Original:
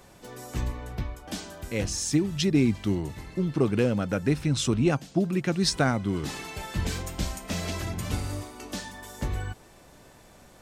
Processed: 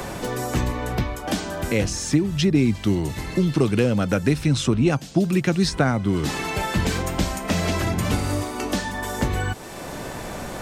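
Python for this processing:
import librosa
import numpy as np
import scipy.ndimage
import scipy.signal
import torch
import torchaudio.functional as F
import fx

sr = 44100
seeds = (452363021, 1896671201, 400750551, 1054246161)

y = fx.band_squash(x, sr, depth_pct=70)
y = y * 10.0 ** (5.5 / 20.0)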